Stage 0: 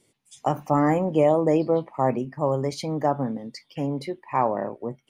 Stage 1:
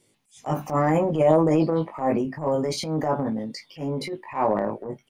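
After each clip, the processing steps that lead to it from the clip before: doubling 19 ms -3.5 dB; transient shaper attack -11 dB, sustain +5 dB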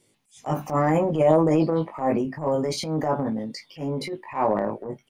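no audible change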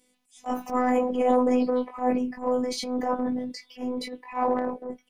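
robot voice 251 Hz

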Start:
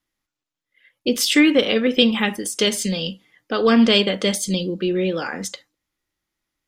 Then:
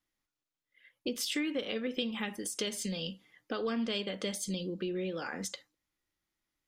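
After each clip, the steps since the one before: compression 3:1, threshold -29 dBFS, peak gain reduction 14 dB; trim -6 dB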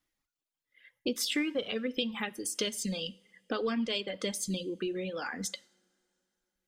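reverb removal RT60 1.6 s; reverberation, pre-delay 3 ms, DRR 20 dB; trim +3 dB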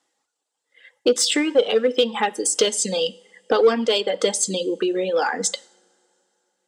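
cabinet simulation 300–9300 Hz, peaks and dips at 470 Hz +9 dB, 820 Hz +9 dB, 2.3 kHz -6 dB, 7.8 kHz +8 dB; in parallel at -8 dB: hard clipper -27 dBFS, distortion -10 dB; on the sum: trim +9 dB

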